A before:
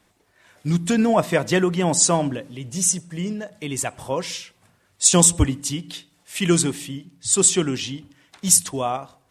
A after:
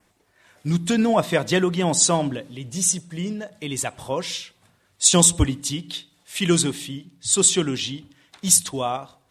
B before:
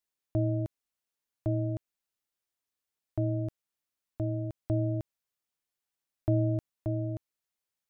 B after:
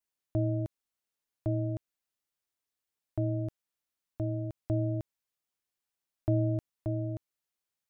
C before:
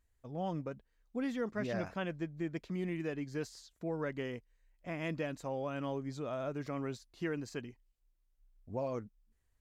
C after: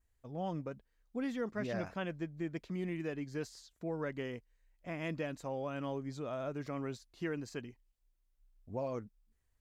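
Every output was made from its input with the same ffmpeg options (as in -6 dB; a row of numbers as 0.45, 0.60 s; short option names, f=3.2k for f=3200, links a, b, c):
-af "adynamicequalizer=threshold=0.00447:dfrequency=3700:dqfactor=3.4:tfrequency=3700:tqfactor=3.4:attack=5:release=100:ratio=0.375:range=3.5:mode=boostabove:tftype=bell,volume=-1dB"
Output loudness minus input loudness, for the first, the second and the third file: -1.0, -1.0, -1.0 LU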